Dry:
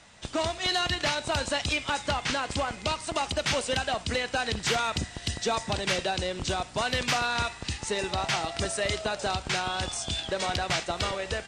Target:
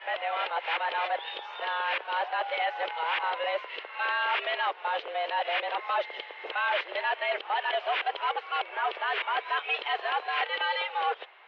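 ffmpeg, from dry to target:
ffmpeg -i in.wav -af "areverse,volume=25dB,asoftclip=hard,volume=-25dB,highpass=frequency=310:width_type=q:width=0.5412,highpass=frequency=310:width_type=q:width=1.307,lowpass=frequency=2900:width_type=q:width=0.5176,lowpass=frequency=2900:width_type=q:width=0.7071,lowpass=frequency=2900:width_type=q:width=1.932,afreqshift=160,volume=2.5dB" out.wav

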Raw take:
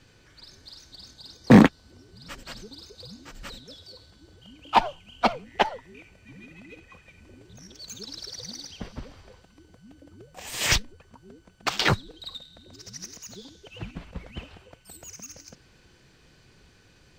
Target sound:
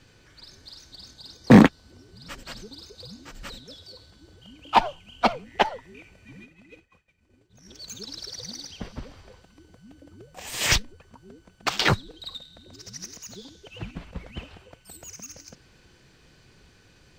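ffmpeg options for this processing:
ffmpeg -i in.wav -filter_complex "[0:a]asplit=3[link_01][link_02][link_03];[link_01]afade=type=out:start_time=6.43:duration=0.02[link_04];[link_02]agate=range=-33dB:threshold=-40dB:ratio=3:detection=peak,afade=type=in:start_time=6.43:duration=0.02,afade=type=out:start_time=7.66:duration=0.02[link_05];[link_03]afade=type=in:start_time=7.66:duration=0.02[link_06];[link_04][link_05][link_06]amix=inputs=3:normalize=0,volume=1dB" out.wav

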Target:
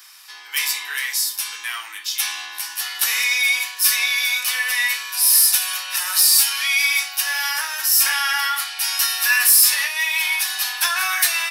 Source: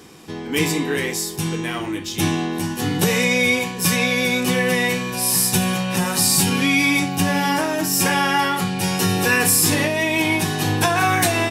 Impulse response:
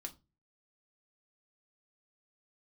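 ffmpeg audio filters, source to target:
-filter_complex "[0:a]highpass=frequency=1200:width=0.5412,highpass=frequency=1200:width=1.3066,asoftclip=type=tanh:threshold=-10dB,aexciter=amount=1.4:drive=5.7:freq=4200,asplit=2[link_01][link_02];[1:a]atrim=start_sample=2205[link_03];[link_02][link_03]afir=irnorm=-1:irlink=0,volume=6dB[link_04];[link_01][link_04]amix=inputs=2:normalize=0,volume=-5dB"

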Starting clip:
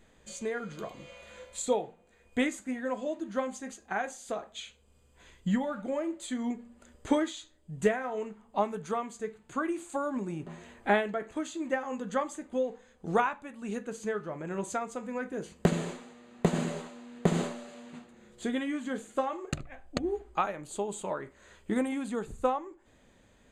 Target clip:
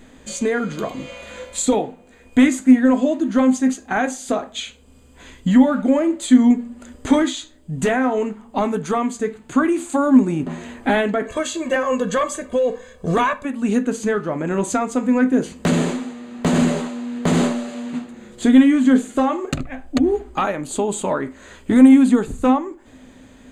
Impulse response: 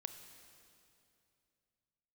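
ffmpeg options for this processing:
-filter_complex "[0:a]asettb=1/sr,asplit=3[link_01][link_02][link_03];[link_01]atrim=end=11.254[link_04];[link_02]atrim=start=11.25:end=13.45,asetpts=PTS-STARTPTS,afade=type=in:duration=0.004:curve=qsin,afade=type=out:start_time=2.196:duration=0.004:curve=qsin,aecho=1:1:1.8:0.97,atrim=end_sample=97020[link_05];[link_03]atrim=start=13.446[link_06];[link_04][link_05]acrossfade=duration=0.004:curve1=hsin:curve2=qsin[link_07];[link_07][link_06]acrossfade=duration=0.004:curve1=qsin:curve2=hsin,apsyclip=27dB,equalizer=frequency=260:width=6.4:gain=13.5,volume=-13.5dB"

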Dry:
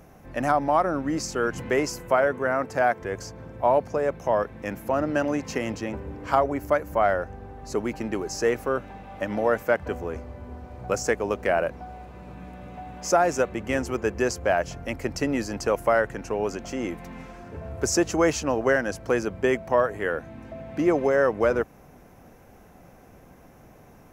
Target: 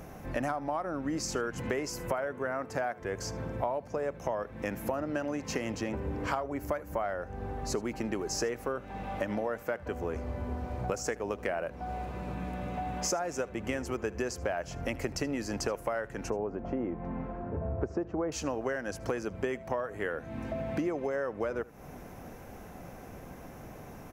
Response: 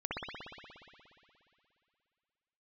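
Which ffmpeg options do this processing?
-filter_complex "[0:a]asettb=1/sr,asplit=3[link_01][link_02][link_03];[link_01]atrim=end=16.304[link_04];[link_02]atrim=start=16.3:end=18.32,asetpts=PTS-STARTPTS,afade=type=in:duration=0.004:curve=qsin,afade=type=out:start_time=2.016:duration=0.004:curve=qsin,lowpass=1000[link_05];[link_03]atrim=start=18.316[link_06];[link_04][link_05]acrossfade=duration=0.004:curve1=hsin:curve2=qsin[link_07];[link_07][link_06]acrossfade=duration=0.004:curve1=qsin:curve2=hsin,acompressor=threshold=-34dB:ratio=10,aecho=1:1:77:0.0841,volume=4.5dB"

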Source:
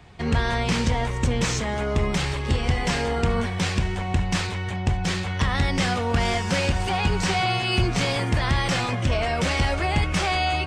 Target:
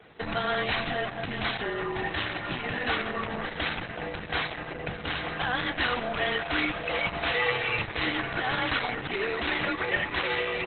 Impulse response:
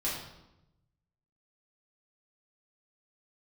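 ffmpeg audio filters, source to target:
-filter_complex "[0:a]equalizer=frequency=125:width_type=o:width=1:gain=5,equalizer=frequency=250:width_type=o:width=1:gain=-10,equalizer=frequency=500:width_type=o:width=1:gain=12,equalizer=frequency=1000:width_type=o:width=1:gain=6,equalizer=frequency=2000:width_type=o:width=1:gain=5,equalizer=frequency=4000:width_type=o:width=1:gain=8,equalizer=frequency=8000:width_type=o:width=1:gain=9,afreqshift=-250,aecho=1:1:2.7:0.42,acrossover=split=110|830[link_01][link_02][link_03];[link_02]alimiter=limit=-20dB:level=0:latency=1:release=413[link_04];[link_01][link_04][link_03]amix=inputs=3:normalize=0,bass=frequency=250:gain=-7,treble=frequency=4000:gain=-10,acrusher=bits=8:mode=log:mix=0:aa=0.000001,aecho=1:1:609|1218:0.158|0.0365,asplit=2[link_05][link_06];[1:a]atrim=start_sample=2205,lowpass=2300[link_07];[link_06][link_07]afir=irnorm=-1:irlink=0,volume=-21dB[link_08];[link_05][link_08]amix=inputs=2:normalize=0,volume=-6dB" -ar 48000 -c:a libopus -b:a 8k

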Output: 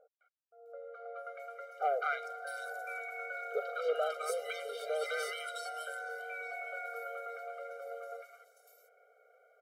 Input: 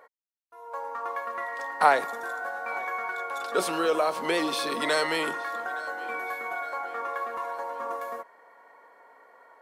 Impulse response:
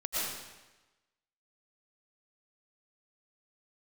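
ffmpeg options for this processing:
-filter_complex "[0:a]acrossover=split=1000|3800[link_01][link_02][link_03];[link_02]adelay=210[link_04];[link_03]adelay=660[link_05];[link_01][link_04][link_05]amix=inputs=3:normalize=0,asoftclip=type=tanh:threshold=-13dB,afftfilt=real='re*eq(mod(floor(b*sr/1024/400),2),1)':imag='im*eq(mod(floor(b*sr/1024/400),2),1)':win_size=1024:overlap=0.75,volume=-5.5dB"

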